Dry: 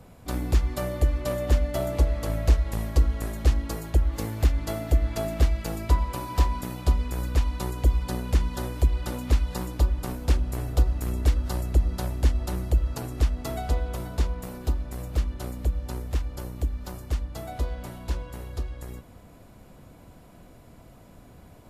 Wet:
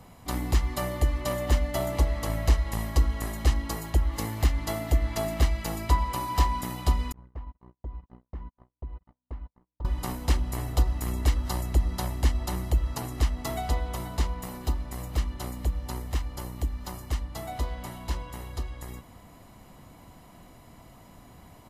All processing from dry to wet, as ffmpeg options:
-filter_complex "[0:a]asettb=1/sr,asplit=3[a][b][c];[a]atrim=end=7.124[d];[b]atrim=start=7.12:end=9.85,asetpts=PTS-STARTPTS,afade=t=in:d=0.004:c=qsin,afade=t=out:st=2.726:d=0.004:c=qsin,agate=range=-57dB:threshold=-26dB:ratio=16:release=100:detection=peak,lowpass=1.2k,acompressor=threshold=-43dB:ratio=2:attack=3.2:release=140:knee=1:detection=peak[e];[c]atrim=start=9.846[f];[d][e]acrossfade=d=0.004:c1=hsin:c2=qsin[g];[g][f]acrossfade=d=0.004:c1=qsin:c2=hsin,lowshelf=f=230:g=-7.5,aecho=1:1:1:0.4,volume=2dB"

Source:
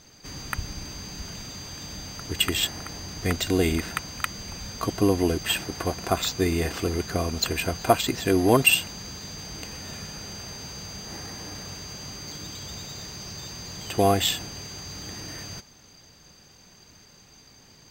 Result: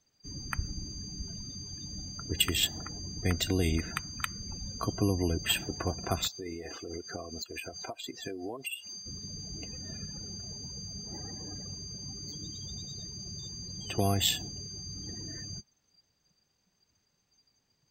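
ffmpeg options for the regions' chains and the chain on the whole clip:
-filter_complex "[0:a]asettb=1/sr,asplit=3[a][b][c];[a]atrim=end=6.274[d];[b]atrim=start=6.27:end=9.06,asetpts=PTS-STARTPTS,afade=t=in:d=0.004:c=qsin,afade=t=out:st=2.786:d=0.004:c=qsin,bass=f=250:g=-10,treble=f=4k:g=2,acompressor=threshold=-31dB:ratio=8:attack=3.2:release=140:knee=1:detection=peak,tremolo=f=4.5:d=0.31[e];[c]atrim=start=9.056[f];[d][e]acrossfade=d=0.004:c1=hsin:c2=qsin[g];[g][f]acrossfade=d=0.004:c1=qsin:c2=hsin,afftdn=nr=22:nf=-36,acrossover=split=200|3000[h][i][j];[i]acompressor=threshold=-32dB:ratio=2.5[k];[h][k][j]amix=inputs=3:normalize=0,volume=-1.5dB"

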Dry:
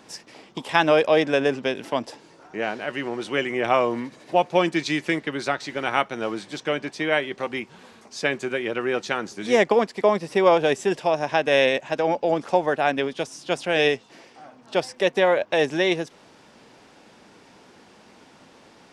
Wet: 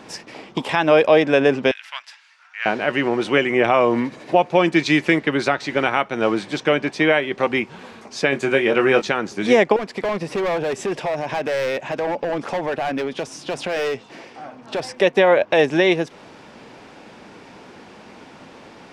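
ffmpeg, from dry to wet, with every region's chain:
-filter_complex "[0:a]asettb=1/sr,asplit=3[a][b][c];[a]atrim=end=1.714[d];[b]atrim=start=1.71:end=2.66,asetpts=PTS-STARTPTS,afade=t=in:d=0.004:c=qsin,afade=t=out:st=0.946:d=0.004:c=qsin,aeval=exprs='if(lt(val(0),0),0.708*val(0),val(0))':c=same,highpass=f=1.5k:w=0.5412,highpass=f=1.5k:w=1.3066,highshelf=f=5.3k:g=-8.5[e];[c]atrim=start=2.656[f];[d][e]acrossfade=d=0.004:c1=hsin:c2=qsin[g];[g][f]acrossfade=d=0.004:c1=qsin:c2=hsin,asettb=1/sr,asplit=3[h][i][j];[h]atrim=end=8.304[k];[i]atrim=start=8.3:end=9.02,asetpts=PTS-STARTPTS,afade=t=in:d=0.004:c=qsin,afade=t=out:st=0.716:d=0.004:c=qsin,highshelf=f=6.5k:g=5.5,asplit=2[l][m];[m]adelay=22,volume=-6.5dB[n];[l][n]amix=inputs=2:normalize=0,atrim=end_sample=31752[o];[j]atrim=start=9.016[p];[k][o]acrossfade=d=0.004:c1=hsin:c2=qsin[q];[q][p]acrossfade=d=0.004:c1=qsin:c2=hsin,asettb=1/sr,asplit=3[r][s][t];[r]atrim=end=9.764[u];[s]atrim=start=9.76:end=14.85,asetpts=PTS-STARTPTS,afade=t=in:d=0.004:c=qsin,afade=t=out:st=5.086:d=0.004:c=qsin,asoftclip=type=hard:threshold=-21dB,acompressor=threshold=-30dB:ratio=5:attack=3.2:release=140:knee=1:detection=peak[v];[t]atrim=start=14.846[w];[u][v]acrossfade=d=0.004:c1=hsin:c2=qsin[x];[x][w]acrossfade=d=0.004:c1=qsin:c2=hsin,equalizer=f=2.4k:t=o:w=0.32:g=2.5,alimiter=limit=-12.5dB:level=0:latency=1:release=266,highshelf=f=4.5k:g=-9,volume=9dB"

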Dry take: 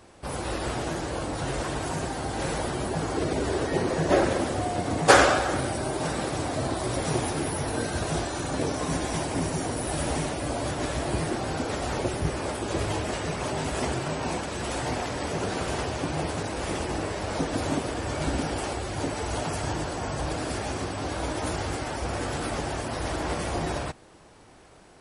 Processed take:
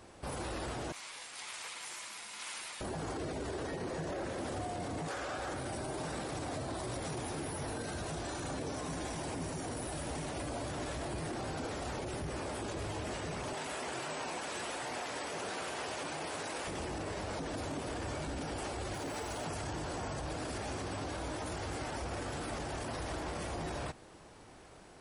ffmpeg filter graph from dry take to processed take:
-filter_complex "[0:a]asettb=1/sr,asplit=3[a][b][c];[a]atrim=end=0.924[d];[b]atrim=start=0.92:end=2.81,asetpts=PTS-STARTPTS,afade=t=in:d=0.004:c=qsin,afade=t=out:st=1.886:d=0.004:c=qsin,highpass=f=1.5k:w=0.5412,highpass=f=1.5k:w=1.3066,aeval=exprs='val(0)*sin(2*PI*580*n/s)':c=same[e];[c]atrim=start=2.806[f];[d][e]acrossfade=d=0.004:c1=hsin:c2=qsin[g];[g][f]acrossfade=d=0.004:c1=qsin:c2=hsin,asettb=1/sr,asplit=3[h][i][j];[h]atrim=end=13.534[k];[i]atrim=start=13.53:end=16.67,asetpts=PTS-STARTPTS,afade=t=in:d=0.004:c=qsin,afade=t=out:st=3.136:d=0.004:c=qsin,acrossover=split=3500[l][m];[m]acompressor=threshold=-47dB:ratio=4:attack=1:release=60[n];[l][n]amix=inputs=2:normalize=0,highpass=f=600:p=1,aemphasis=mode=production:type=cd[o];[j]atrim=start=16.666[p];[k][o]acrossfade=d=0.004:c1=hsin:c2=qsin[q];[q][p]acrossfade=d=0.004:c1=qsin:c2=hsin,asettb=1/sr,asplit=3[r][s][t];[r]atrim=end=18.944[u];[s]atrim=start=18.94:end=19.44,asetpts=PTS-STARTPTS,afade=t=in:d=0.004:c=qsin,afade=t=out:st=0.496:d=0.004:c=qsin,lowshelf=f=150:g=-8,acrusher=bits=7:mix=0:aa=0.5[v];[t]atrim=start=19.436[w];[u][v]acrossfade=d=0.004:c1=hsin:c2=qsin[x];[x][w]acrossfade=d=0.004:c1=qsin:c2=hsin,acompressor=threshold=-28dB:ratio=6,alimiter=level_in=4.5dB:limit=-24dB:level=0:latency=1:release=17,volume=-4.5dB,volume=-2.5dB"

